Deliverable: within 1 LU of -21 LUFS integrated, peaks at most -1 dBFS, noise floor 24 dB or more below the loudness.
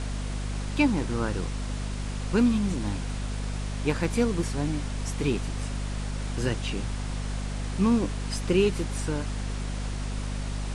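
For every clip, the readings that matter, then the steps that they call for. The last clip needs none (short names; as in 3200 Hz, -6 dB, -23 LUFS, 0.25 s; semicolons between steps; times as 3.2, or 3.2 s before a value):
hum 50 Hz; harmonics up to 250 Hz; hum level -29 dBFS; noise floor -32 dBFS; noise floor target -53 dBFS; loudness -29.0 LUFS; peak -10.0 dBFS; loudness target -21.0 LUFS
-> notches 50/100/150/200/250 Hz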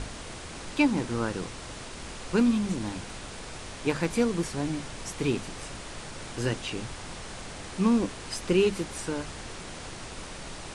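hum none; noise floor -41 dBFS; noise floor target -55 dBFS
-> noise print and reduce 14 dB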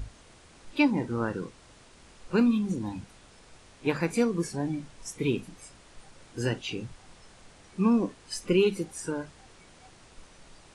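noise floor -55 dBFS; loudness -29.0 LUFS; peak -11.5 dBFS; loudness target -21.0 LUFS
-> gain +8 dB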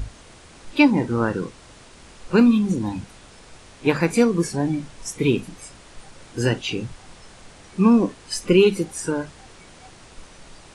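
loudness -21.0 LUFS; peak -3.5 dBFS; noise floor -47 dBFS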